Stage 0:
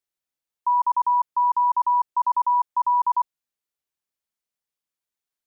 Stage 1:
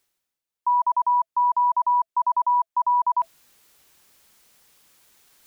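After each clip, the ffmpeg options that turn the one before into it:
-af "bandreject=f=660:w=22,areverse,acompressor=mode=upward:threshold=-34dB:ratio=2.5,areverse"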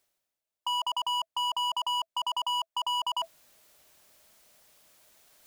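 -af "equalizer=f=630:t=o:w=0.3:g=11.5,aeval=exprs='0.0944*(abs(mod(val(0)/0.0944+3,4)-2)-1)':c=same,volume=-3dB"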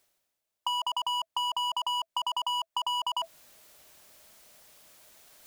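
-af "acompressor=threshold=-32dB:ratio=6,volume=4.5dB"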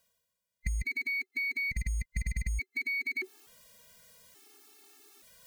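-af "afftfilt=real='real(if(between(b,1,1008),(2*floor((b-1)/48)+1)*48-b,b),0)':imag='imag(if(between(b,1,1008),(2*floor((b-1)/48)+1)*48-b,b),0)*if(between(b,1,1008),-1,1)':win_size=2048:overlap=0.75,afftfilt=real='re*gt(sin(2*PI*0.57*pts/sr)*(1-2*mod(floor(b*sr/1024/230),2)),0)':imag='im*gt(sin(2*PI*0.57*pts/sr)*(1-2*mod(floor(b*sr/1024/230),2)),0)':win_size=1024:overlap=0.75,volume=1.5dB"

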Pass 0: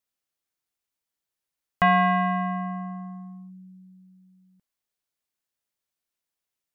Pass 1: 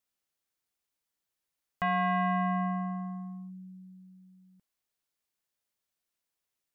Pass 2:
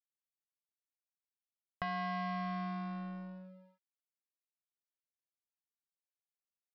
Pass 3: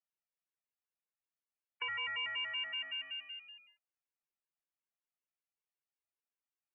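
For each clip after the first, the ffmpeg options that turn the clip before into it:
-af "alimiter=level_in=0.5dB:limit=-24dB:level=0:latency=1:release=476,volume=-0.5dB"
-af "acompressor=threshold=-36dB:ratio=3,aresample=11025,aeval=exprs='sgn(val(0))*max(abs(val(0))-0.00531,0)':c=same,aresample=44100"
-af "lowpass=f=2.6k:t=q:w=0.5098,lowpass=f=2.6k:t=q:w=0.6013,lowpass=f=2.6k:t=q:w=0.9,lowpass=f=2.6k:t=q:w=2.563,afreqshift=-3000,afftfilt=real='re*gt(sin(2*PI*5.3*pts/sr)*(1-2*mod(floor(b*sr/1024/290),2)),0)':imag='im*gt(sin(2*PI*5.3*pts/sr)*(1-2*mod(floor(b*sr/1024/290),2)),0)':win_size=1024:overlap=0.75,volume=2.5dB"

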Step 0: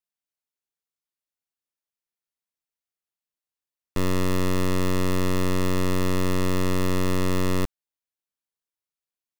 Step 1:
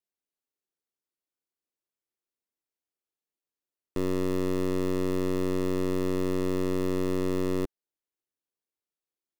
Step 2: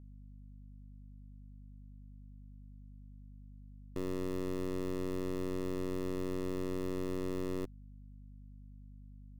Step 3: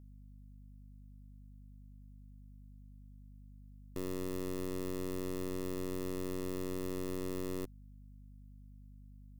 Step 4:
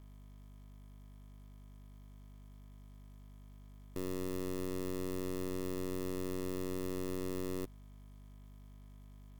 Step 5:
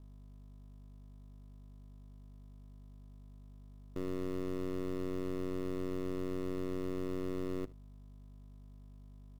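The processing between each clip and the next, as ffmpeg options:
-af "equalizer=f=360:w=1:g=11.5,alimiter=limit=-14.5dB:level=0:latency=1,volume=-5dB"
-af "aeval=exprs='val(0)+0.00794*(sin(2*PI*50*n/s)+sin(2*PI*2*50*n/s)/2+sin(2*PI*3*50*n/s)/3+sin(2*PI*4*50*n/s)/4+sin(2*PI*5*50*n/s)/5)':c=same,volume=-9dB"
-af "crystalizer=i=1.5:c=0,volume=-2dB"
-af "acrusher=bits=10:mix=0:aa=0.000001"
-af "adynamicsmooth=sensitivity=7:basefreq=930,acrusher=bits=7:mode=log:mix=0:aa=0.000001,aecho=1:1:73:0.0794,volume=1dB"

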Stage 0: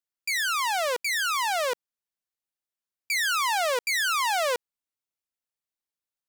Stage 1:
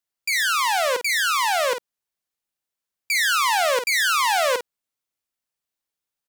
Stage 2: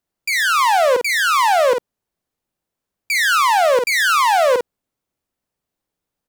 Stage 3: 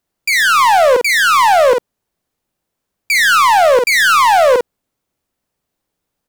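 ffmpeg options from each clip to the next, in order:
-filter_complex "[0:a]asplit=2[a][b];[b]adelay=49,volume=-8dB[c];[a][c]amix=inputs=2:normalize=0,volume=4.5dB"
-af "tiltshelf=f=970:g=7.5,alimiter=limit=-14dB:level=0:latency=1:release=49,volume=8.5dB"
-af "acontrast=54"

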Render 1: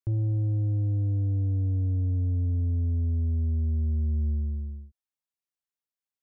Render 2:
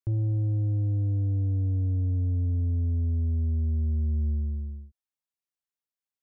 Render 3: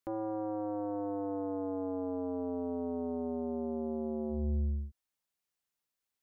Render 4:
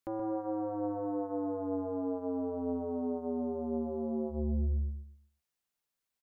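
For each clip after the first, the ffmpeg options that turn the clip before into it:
-af anull
-af "aeval=exprs='0.0708*sin(PI/2*2.24*val(0)/0.0708)':c=same,volume=-6dB"
-filter_complex "[0:a]asplit=2[a][b];[b]adelay=126,lowpass=f=1.3k:p=1,volume=-5.5dB,asplit=2[c][d];[d]adelay=126,lowpass=f=1.3k:p=1,volume=0.27,asplit=2[e][f];[f]adelay=126,lowpass=f=1.3k:p=1,volume=0.27,asplit=2[g][h];[h]adelay=126,lowpass=f=1.3k:p=1,volume=0.27[i];[a][c][e][g][i]amix=inputs=5:normalize=0"

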